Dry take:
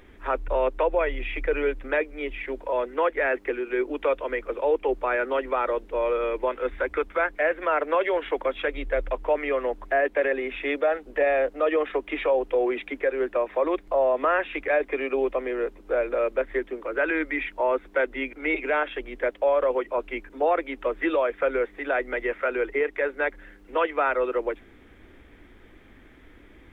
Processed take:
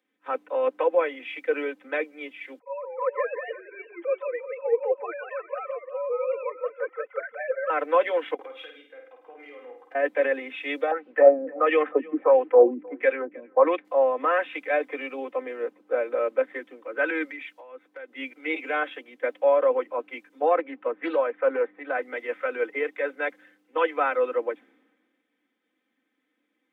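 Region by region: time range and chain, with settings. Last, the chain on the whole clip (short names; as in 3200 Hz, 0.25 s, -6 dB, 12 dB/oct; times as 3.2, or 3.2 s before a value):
2.59–7.7 sine-wave speech + HPF 640 Hz 6 dB/oct + warbling echo 0.178 s, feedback 35%, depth 192 cents, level -3.5 dB
8.34–9.95 comb 2.5 ms + compressor 8:1, threshold -33 dBFS + flutter echo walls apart 8.8 m, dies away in 0.64 s
10.91–13.85 LFO low-pass sine 1.5 Hz 230–2800 Hz + echo 0.312 s -19.5 dB
17.3–18.1 bell 130 Hz -9 dB 1.1 oct + compressor 12:1, threshold -29 dBFS
20.56–22.02 LPF 2200 Hz + Doppler distortion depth 0.16 ms
whole clip: HPF 240 Hz 24 dB/oct; comb 3.9 ms, depth 78%; three-band expander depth 70%; gain -3.5 dB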